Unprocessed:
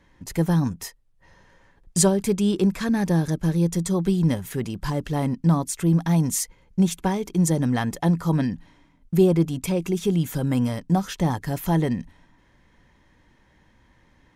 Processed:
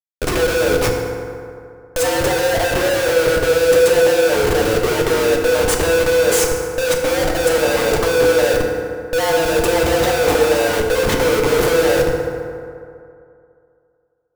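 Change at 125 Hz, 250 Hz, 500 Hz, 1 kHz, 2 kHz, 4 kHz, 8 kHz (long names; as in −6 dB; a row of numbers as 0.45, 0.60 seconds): −5.0, −2.5, +15.0, +10.0, +18.0, +14.0, +6.5 decibels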